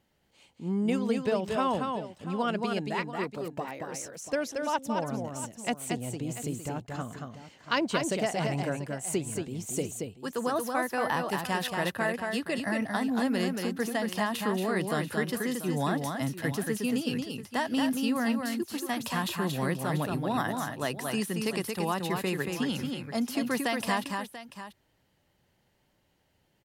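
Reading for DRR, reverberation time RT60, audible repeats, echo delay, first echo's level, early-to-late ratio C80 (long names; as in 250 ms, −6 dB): no reverb audible, no reverb audible, 2, 228 ms, −4.5 dB, no reverb audible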